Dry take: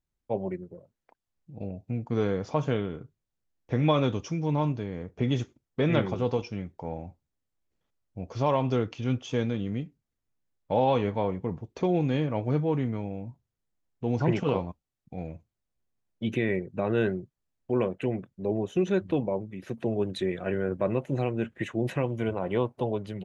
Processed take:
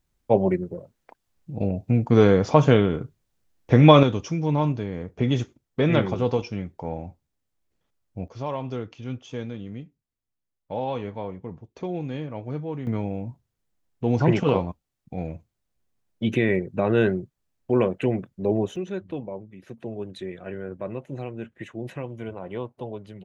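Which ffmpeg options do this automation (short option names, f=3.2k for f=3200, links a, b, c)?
-af "asetnsamples=n=441:p=0,asendcmd='4.03 volume volume 4dB;8.28 volume volume -5dB;12.87 volume volume 5.5dB;18.76 volume volume -5.5dB',volume=11dB"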